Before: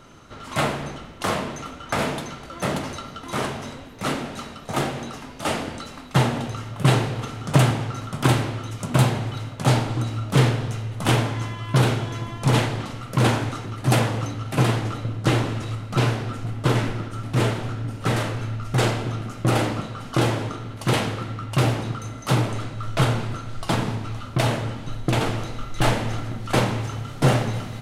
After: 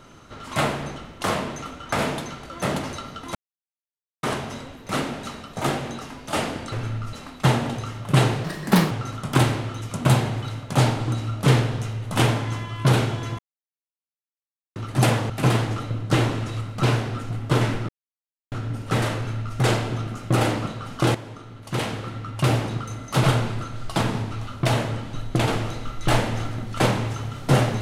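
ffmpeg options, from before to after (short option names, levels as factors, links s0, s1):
-filter_complex "[0:a]asplit=13[s0][s1][s2][s3][s4][s5][s6][s7][s8][s9][s10][s11][s12];[s0]atrim=end=3.35,asetpts=PTS-STARTPTS,afade=t=out:st=3.346:d=0.004:c=hsin,apad=pad_dur=0.88[s13];[s1]atrim=start=3.35:end=5.842,asetpts=PTS-STARTPTS,afade=t=in:d=0.004:c=hsin[s14];[s2]atrim=start=18.298:end=18.712[s15];[s3]atrim=start=5.838:end=7.154[s16];[s4]atrim=start=7.15:end=7.8,asetpts=PTS-STARTPTS,asetrate=61299,aresample=44100,atrim=end_sample=20622,asetpts=PTS-STARTPTS[s17];[s5]atrim=start=7.796:end=12.28,asetpts=PTS-STARTPTS,afade=t=out:st=4.48:d=0.004:c=hsin[s18];[s6]atrim=start=12.28:end=13.65,asetpts=PTS-STARTPTS,volume=0[s19];[s7]atrim=start=13.65:end=14.192,asetpts=PTS-STARTPTS,afade=t=in:d=0.004:c=hsin[s20];[s8]atrim=start=14.438:end=17.03,asetpts=PTS-STARTPTS,afade=t=out:st=2.588:d=0.004:c=hsin[s21];[s9]atrim=start=17.03:end=17.66,asetpts=PTS-STARTPTS,volume=0[s22];[s10]atrim=start=17.66:end=20.29,asetpts=PTS-STARTPTS,afade=t=in:d=0.004:c=hsin,afade=t=out:st=2.626:d=0.004:c=hsin:silence=0.211349[s23];[s11]atrim=start=20.29:end=22.382,asetpts=PTS-STARTPTS,afade=t=in:d=1.42:silence=0.211349[s24];[s12]atrim=start=22.968[s25];[s13][s14]concat=n=2:v=0:a=1[s26];[s26][s15]acrossfade=d=0.004:c1=hsin:c2=hsin[s27];[s27][s16]acrossfade=d=0.004:c1=hsin:c2=hsin[s28];[s28][s17]acrossfade=d=0.004:c1=hsin:c2=hsin[s29];[s18][s19][s20]concat=n=3:v=0:a=1[s30];[s29][s30]acrossfade=d=0.004:c1=hsin:c2=hsin[s31];[s21][s22][s23][s24]concat=n=4:v=0:a=1[s32];[s31][s32]acrossfade=d=0.004:c1=hsin:c2=hsin[s33];[s33][s25]acrossfade=d=0.004:c1=hsin:c2=hsin"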